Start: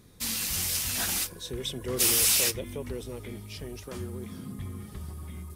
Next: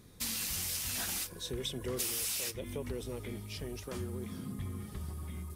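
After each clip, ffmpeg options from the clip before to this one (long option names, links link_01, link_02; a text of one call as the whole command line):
ffmpeg -i in.wav -af "acompressor=threshold=-31dB:ratio=10,volume=-1.5dB" out.wav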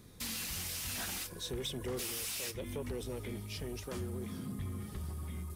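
ffmpeg -i in.wav -filter_complex "[0:a]acrossover=split=710|3900[link_01][link_02][link_03];[link_03]alimiter=level_in=8.5dB:limit=-24dB:level=0:latency=1:release=24,volume=-8.5dB[link_04];[link_01][link_02][link_04]amix=inputs=3:normalize=0,asoftclip=type=tanh:threshold=-32dB,volume=1dB" out.wav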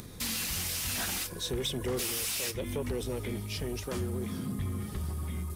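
ffmpeg -i in.wav -af "acompressor=mode=upward:threshold=-46dB:ratio=2.5,volume=6dB" out.wav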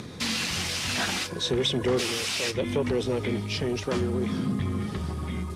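ffmpeg -i in.wav -af "highpass=110,lowpass=5200,volume=8.5dB" out.wav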